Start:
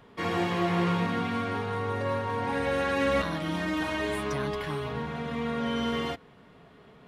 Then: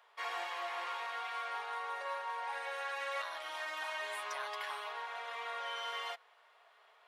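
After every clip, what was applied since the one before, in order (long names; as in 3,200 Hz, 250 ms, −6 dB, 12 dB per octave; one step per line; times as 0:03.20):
inverse Chebyshev high-pass filter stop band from 200 Hz, stop band 60 dB
speech leveller within 3 dB 0.5 s
level −6 dB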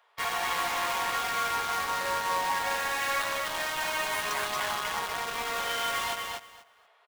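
in parallel at −4 dB: log-companded quantiser 2 bits
on the sum: repeating echo 241 ms, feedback 17%, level −3.5 dB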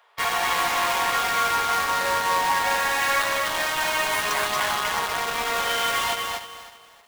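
feedback echo at a low word length 314 ms, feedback 35%, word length 9 bits, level −14 dB
level +6.5 dB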